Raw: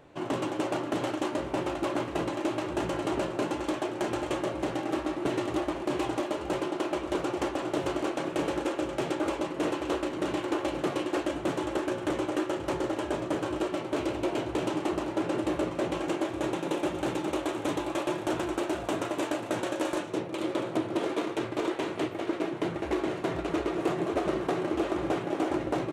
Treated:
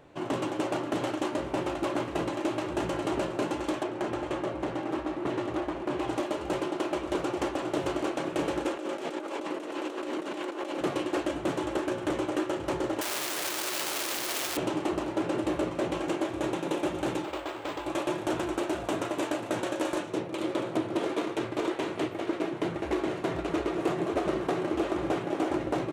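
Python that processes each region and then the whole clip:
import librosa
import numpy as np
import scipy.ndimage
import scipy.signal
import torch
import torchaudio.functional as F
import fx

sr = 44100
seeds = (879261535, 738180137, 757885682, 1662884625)

y = fx.chain(x, sr, fx.high_shelf(hz=4300.0, db=-8.5),
    fx.transformer_sat(knee_hz=680.0), at=(3.83, 6.08))
y = fx.chain(y, sr, fx.highpass(hz=230.0, slope=24),
    fx.over_compress(threshold_db=-35.0, ratio=-1.0), at=(8.77, 10.81))
y = fx.chain(y, sr, fx.clip_1bit(),
    fx.highpass(hz=860.0, slope=6),
    fx.high_shelf(hz=3600.0, db=7.5), at=(13.01, 14.57))
y = fx.chain(y, sr, fx.peak_eq(hz=180.0, db=-12.5, octaves=2.2),
    fx.resample_linear(factor=4), at=(17.24, 17.86))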